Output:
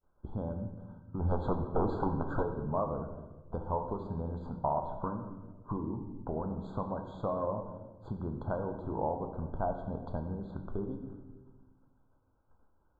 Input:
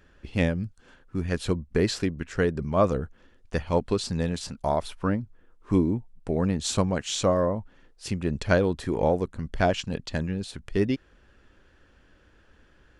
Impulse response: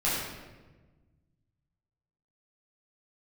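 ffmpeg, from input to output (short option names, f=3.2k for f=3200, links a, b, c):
-filter_complex "[0:a]agate=range=-33dB:threshold=-46dB:ratio=3:detection=peak,acompressor=threshold=-32dB:ratio=8,asplit=3[a][b][c];[a]afade=t=out:st=1.19:d=0.02[d];[b]aeval=exprs='0.0596*sin(PI/2*2*val(0)/0.0596)':c=same,afade=t=in:st=1.19:d=0.02,afade=t=out:st=2.42:d=0.02[e];[c]afade=t=in:st=2.42:d=0.02[f];[d][e][f]amix=inputs=3:normalize=0,lowpass=f=950:t=q:w=3.9,asplit=2[g][h];[1:a]atrim=start_sample=2205,highshelf=f=9.9k:g=9.5[i];[h][i]afir=irnorm=-1:irlink=0,volume=-14dB[j];[g][j]amix=inputs=2:normalize=0,afftfilt=real='re*eq(mod(floor(b*sr/1024/1600),2),0)':imag='im*eq(mod(floor(b*sr/1024/1600),2),0)':win_size=1024:overlap=0.75,volume=-4dB"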